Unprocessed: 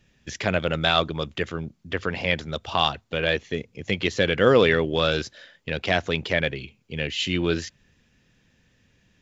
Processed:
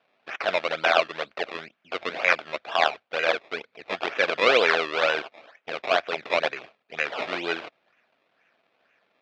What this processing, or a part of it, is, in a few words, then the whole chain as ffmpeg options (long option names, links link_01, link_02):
circuit-bent sampling toy: -filter_complex "[0:a]asettb=1/sr,asplit=3[link_01][link_02][link_03];[link_01]atrim=end=1.434[link_04];[link_02]atrim=start=1.43:end=2.33,asetpts=PTS-STARTPTS,afade=type=in:duration=0.004:curve=qsin,afade=type=out:start_time=0.896:duration=0.004:curve=qsin,equalizer=frequency=1400:width=0.5:gain=4[link_05];[link_03]atrim=start=2.326[link_06];[link_04][link_05]acrossfade=duration=0.004:curve1=hsin:curve2=qsin[link_07];[link_07][link_06]acrossfade=duration=0.004:curve1=qsin:curve2=hsin,acrusher=samples=20:mix=1:aa=0.000001:lfo=1:lforange=20:lforate=2.1,highpass=570,equalizer=frequency=650:width_type=q:width=4:gain=6,equalizer=frequency=950:width_type=q:width=4:gain=-4,equalizer=frequency=1500:width_type=q:width=4:gain=4,equalizer=frequency=2400:width_type=q:width=4:gain=7,equalizer=frequency=3500:width_type=q:width=4:gain=3,lowpass=frequency=4400:width=0.5412,lowpass=frequency=4400:width=1.3066"